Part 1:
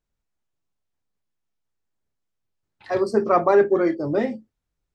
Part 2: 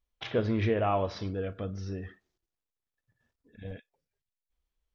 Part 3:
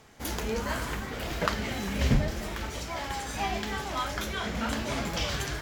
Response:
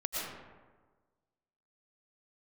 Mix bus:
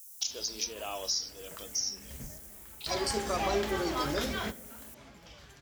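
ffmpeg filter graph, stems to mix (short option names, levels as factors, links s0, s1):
-filter_complex "[0:a]volume=0.398,asplit=3[s0][s1][s2];[s1]volume=0.0891[s3];[1:a]aexciter=amount=7.8:drive=9.7:freq=5500,highpass=f=310:w=0.5412,highpass=f=310:w=1.3066,volume=0.316[s4];[2:a]volume=0.75,asplit=2[s5][s6];[s6]volume=0.106[s7];[s2]apad=whole_len=247759[s8];[s5][s8]sidechaingate=range=0.0224:threshold=0.00178:ratio=16:detection=peak[s9];[s0][s4]amix=inputs=2:normalize=0,aexciter=amount=11.3:drive=8.5:freq=3000,acompressor=threshold=0.0251:ratio=4,volume=1[s10];[3:a]atrim=start_sample=2205[s11];[s3][s11]afir=irnorm=-1:irlink=0[s12];[s7]aecho=0:1:93:1[s13];[s9][s10][s12][s13]amix=inputs=4:normalize=0"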